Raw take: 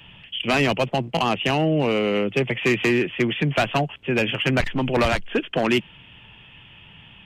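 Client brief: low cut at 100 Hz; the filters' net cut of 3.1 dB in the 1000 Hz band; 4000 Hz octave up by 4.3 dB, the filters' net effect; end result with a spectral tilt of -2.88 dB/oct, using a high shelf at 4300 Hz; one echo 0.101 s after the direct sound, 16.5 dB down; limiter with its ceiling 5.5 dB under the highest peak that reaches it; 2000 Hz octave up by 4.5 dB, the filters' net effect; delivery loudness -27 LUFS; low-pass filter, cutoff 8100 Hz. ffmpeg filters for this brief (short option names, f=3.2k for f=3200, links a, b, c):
-af "highpass=100,lowpass=8.1k,equalizer=f=1k:t=o:g=-6,equalizer=f=2k:t=o:g=6.5,equalizer=f=4k:t=o:g=8,highshelf=f=4.3k:g=-8.5,alimiter=limit=-11dB:level=0:latency=1,aecho=1:1:101:0.15,volume=-5dB"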